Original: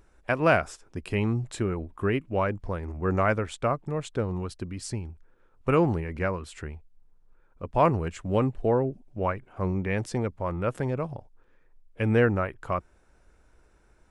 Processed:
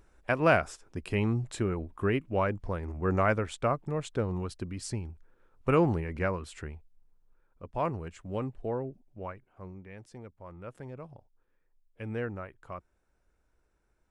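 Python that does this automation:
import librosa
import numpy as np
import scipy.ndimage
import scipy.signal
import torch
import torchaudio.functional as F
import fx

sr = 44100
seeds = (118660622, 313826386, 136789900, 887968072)

y = fx.gain(x, sr, db=fx.line((6.46, -2.0), (7.83, -9.5), (9.03, -9.5), (9.91, -19.5), (11.16, -13.0)))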